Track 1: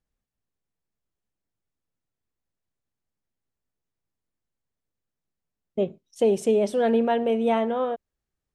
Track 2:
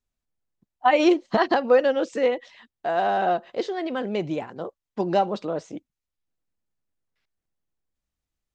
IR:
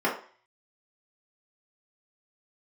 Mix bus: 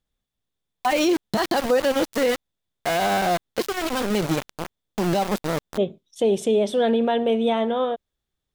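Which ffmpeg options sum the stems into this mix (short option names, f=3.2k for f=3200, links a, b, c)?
-filter_complex "[0:a]equalizer=f=3.5k:w=5.9:g=13,volume=2.5dB[a];[1:a]bass=f=250:g=9,treble=f=4k:g=14,aeval=exprs='val(0)*gte(abs(val(0)),0.0631)':c=same,volume=2.5dB[b];[a][b]amix=inputs=2:normalize=0,alimiter=limit=-12.5dB:level=0:latency=1:release=44"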